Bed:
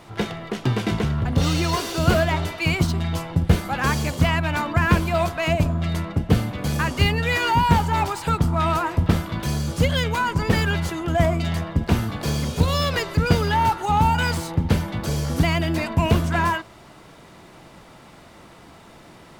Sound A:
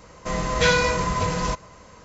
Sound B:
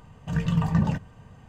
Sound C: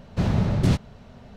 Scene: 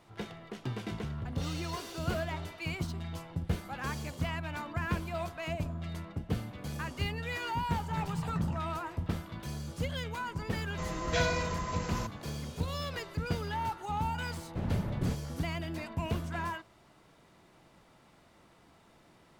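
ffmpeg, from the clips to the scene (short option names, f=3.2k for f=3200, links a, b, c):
-filter_complex "[0:a]volume=-15dB[a];[3:a]equalizer=f=5.3k:t=o:w=1.5:g=-10[b];[2:a]atrim=end=1.48,asetpts=PTS-STARTPTS,volume=-12.5dB,afade=t=in:d=0.004:c=hsin,afade=t=out:st=1.476:d=0.004:c=hsin,adelay=7610[c];[1:a]atrim=end=2.04,asetpts=PTS-STARTPTS,volume=-12dB,afade=t=in:d=0.004:c=hsin,afade=t=out:st=2.036:d=0.004:c=hsin,adelay=10520[d];[b]atrim=end=1.36,asetpts=PTS-STARTPTS,volume=-11.5dB,afade=t=in:d=0.004:c=hsin,afade=t=out:st=1.356:d=0.004:c=hsin,adelay=14380[e];[a][c][d][e]amix=inputs=4:normalize=0"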